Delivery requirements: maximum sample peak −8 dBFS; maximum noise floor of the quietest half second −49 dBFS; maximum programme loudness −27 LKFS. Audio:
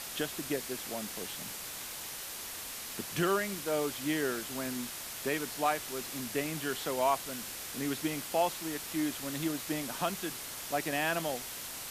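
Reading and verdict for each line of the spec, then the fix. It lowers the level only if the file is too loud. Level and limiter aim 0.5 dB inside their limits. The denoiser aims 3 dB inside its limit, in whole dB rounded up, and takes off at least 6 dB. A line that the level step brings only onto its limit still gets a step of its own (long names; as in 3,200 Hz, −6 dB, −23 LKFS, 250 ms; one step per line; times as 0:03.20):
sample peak −17.0 dBFS: in spec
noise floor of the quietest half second −42 dBFS: out of spec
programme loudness −34.5 LKFS: in spec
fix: broadband denoise 10 dB, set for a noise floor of −42 dBFS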